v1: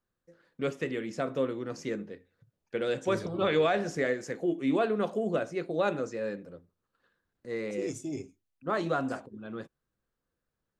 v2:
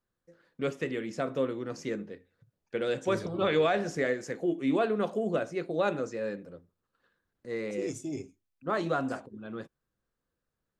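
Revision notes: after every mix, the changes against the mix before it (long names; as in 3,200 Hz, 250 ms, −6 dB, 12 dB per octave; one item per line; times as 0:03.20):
nothing changed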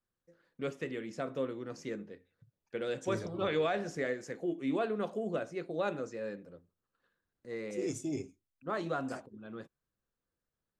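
first voice −5.5 dB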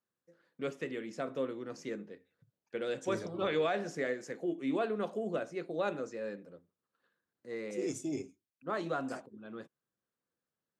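master: add high-pass filter 150 Hz 12 dB per octave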